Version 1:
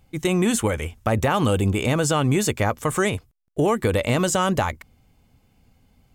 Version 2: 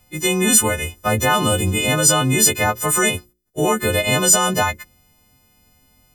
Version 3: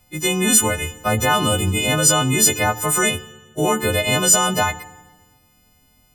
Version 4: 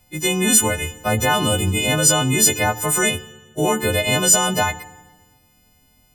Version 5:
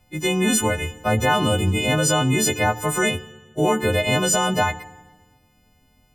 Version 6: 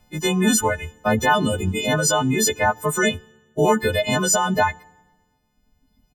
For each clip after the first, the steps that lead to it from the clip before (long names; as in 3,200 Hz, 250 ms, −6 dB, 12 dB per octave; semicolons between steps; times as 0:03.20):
every partial snapped to a pitch grid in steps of 3 semitones; mains-hum notches 60/120/180/240/300/360/420/480/540 Hz; level +2 dB
feedback delay network reverb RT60 1.3 s, low-frequency decay 1.35×, high-frequency decay 0.95×, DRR 15.5 dB; level −1 dB
notch filter 1,200 Hz, Q 8.7
high-shelf EQ 4,500 Hz −11 dB
reverb reduction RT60 1.7 s; comb filter 4.6 ms, depth 42%; level +1.5 dB